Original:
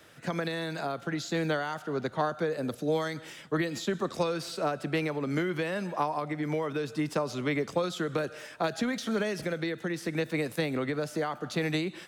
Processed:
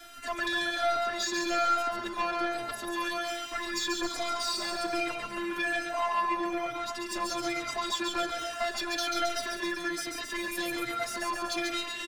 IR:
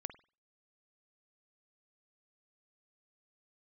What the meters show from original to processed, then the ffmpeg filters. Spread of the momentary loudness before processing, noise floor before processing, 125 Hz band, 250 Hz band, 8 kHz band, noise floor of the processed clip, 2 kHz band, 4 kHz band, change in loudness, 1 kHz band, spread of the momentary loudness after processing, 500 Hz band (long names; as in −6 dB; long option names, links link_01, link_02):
3 LU, −49 dBFS, −20.5 dB, −5.0 dB, +7.5 dB, −39 dBFS, +3.0 dB, +6.5 dB, +0.5 dB, +4.5 dB, 6 LU, −4.0 dB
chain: -filter_complex "[0:a]bandreject=frequency=2100:width=14,apsyclip=21.5dB,acrossover=split=270|1500[link_01][link_02][link_03];[link_01]acompressor=threshold=-25dB:ratio=12[link_04];[link_04][link_02][link_03]amix=inputs=3:normalize=0,afftfilt=real='hypot(re,im)*cos(PI*b)':imag='0':win_size=512:overlap=0.75,asoftclip=type=tanh:threshold=-11dB,equalizer=frequency=390:width=1.2:gain=-10.5,asplit=2[link_05][link_06];[link_06]aecho=0:1:140|266|379.4|481.5|573.3:0.631|0.398|0.251|0.158|0.1[link_07];[link_05][link_07]amix=inputs=2:normalize=0,asplit=2[link_08][link_09];[link_09]adelay=3.8,afreqshift=-1.2[link_10];[link_08][link_10]amix=inputs=2:normalize=1,volume=-6.5dB"